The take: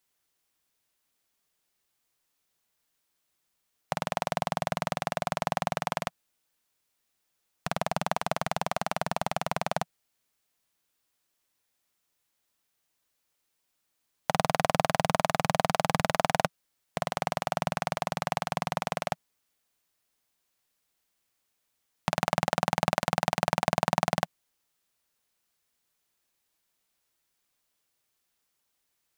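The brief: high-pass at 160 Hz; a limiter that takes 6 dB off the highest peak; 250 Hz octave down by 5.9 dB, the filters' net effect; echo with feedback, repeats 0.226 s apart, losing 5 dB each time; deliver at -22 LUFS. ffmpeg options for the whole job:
-af "highpass=160,equalizer=f=250:t=o:g=-6.5,alimiter=limit=-11dB:level=0:latency=1,aecho=1:1:226|452|678|904|1130|1356|1582:0.562|0.315|0.176|0.0988|0.0553|0.031|0.0173,volume=10.5dB"

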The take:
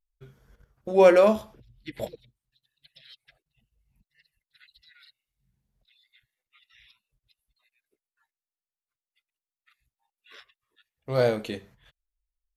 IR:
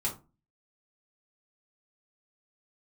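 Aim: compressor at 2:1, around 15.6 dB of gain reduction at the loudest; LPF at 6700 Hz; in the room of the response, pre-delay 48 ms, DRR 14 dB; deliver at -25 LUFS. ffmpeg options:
-filter_complex "[0:a]lowpass=6.7k,acompressor=threshold=-42dB:ratio=2,asplit=2[a][b];[1:a]atrim=start_sample=2205,adelay=48[c];[b][c]afir=irnorm=-1:irlink=0,volume=-18.5dB[d];[a][d]amix=inputs=2:normalize=0,volume=14.5dB"

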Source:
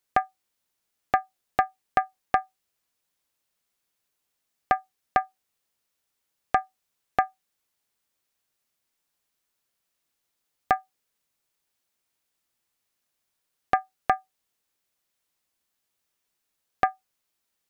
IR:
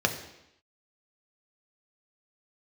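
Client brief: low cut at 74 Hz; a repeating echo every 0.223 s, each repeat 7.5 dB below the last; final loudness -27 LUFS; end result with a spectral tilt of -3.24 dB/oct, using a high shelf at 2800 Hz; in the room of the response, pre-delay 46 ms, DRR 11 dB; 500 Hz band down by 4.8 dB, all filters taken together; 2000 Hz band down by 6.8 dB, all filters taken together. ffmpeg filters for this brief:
-filter_complex "[0:a]highpass=74,equalizer=f=500:t=o:g=-6.5,equalizer=f=2k:t=o:g=-6.5,highshelf=f=2.8k:g=-5.5,aecho=1:1:223|446|669|892|1115:0.422|0.177|0.0744|0.0312|0.0131,asplit=2[a][b];[1:a]atrim=start_sample=2205,adelay=46[c];[b][c]afir=irnorm=-1:irlink=0,volume=-22.5dB[d];[a][d]amix=inputs=2:normalize=0,volume=6dB"

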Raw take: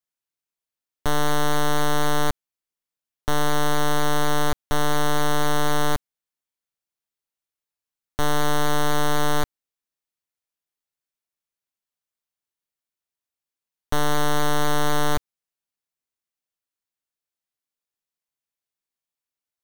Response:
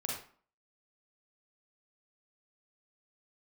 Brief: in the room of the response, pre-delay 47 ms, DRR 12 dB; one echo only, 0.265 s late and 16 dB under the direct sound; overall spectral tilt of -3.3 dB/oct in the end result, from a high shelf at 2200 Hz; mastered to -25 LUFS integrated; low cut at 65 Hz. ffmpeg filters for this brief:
-filter_complex "[0:a]highpass=65,highshelf=f=2.2k:g=5.5,aecho=1:1:265:0.158,asplit=2[a][b];[1:a]atrim=start_sample=2205,adelay=47[c];[b][c]afir=irnorm=-1:irlink=0,volume=-14.5dB[d];[a][d]amix=inputs=2:normalize=0,volume=-2.5dB"

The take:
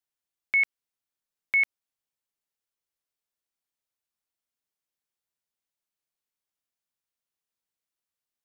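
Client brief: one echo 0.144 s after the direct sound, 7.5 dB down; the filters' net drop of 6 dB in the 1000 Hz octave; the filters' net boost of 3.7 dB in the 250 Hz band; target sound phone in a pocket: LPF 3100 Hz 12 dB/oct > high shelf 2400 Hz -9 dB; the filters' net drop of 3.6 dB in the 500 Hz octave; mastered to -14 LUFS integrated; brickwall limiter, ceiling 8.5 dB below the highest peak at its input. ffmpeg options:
-af "equalizer=f=250:t=o:g=6.5,equalizer=f=500:t=o:g=-4.5,equalizer=f=1k:t=o:g=-5,alimiter=level_in=2dB:limit=-24dB:level=0:latency=1,volume=-2dB,lowpass=3.1k,highshelf=f=2.4k:g=-9,aecho=1:1:144:0.422,volume=24.5dB"

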